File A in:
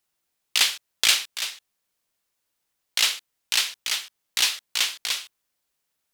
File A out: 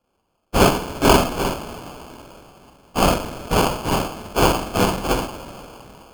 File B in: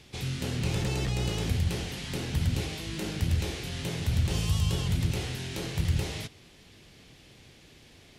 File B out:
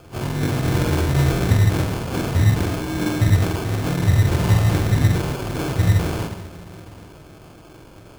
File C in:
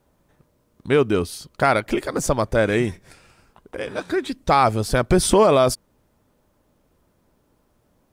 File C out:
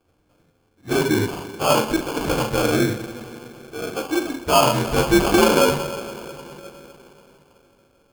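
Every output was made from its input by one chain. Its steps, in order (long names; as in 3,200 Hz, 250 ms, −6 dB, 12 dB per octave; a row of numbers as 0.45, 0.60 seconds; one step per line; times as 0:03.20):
partials spread apart or drawn together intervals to 84%
coupled-rooms reverb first 0.47 s, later 3.8 s, from −18 dB, DRR −1.5 dB
decimation without filtering 23×
loudness normalisation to −20 LKFS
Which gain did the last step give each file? +5.0, +9.0, −1.5 decibels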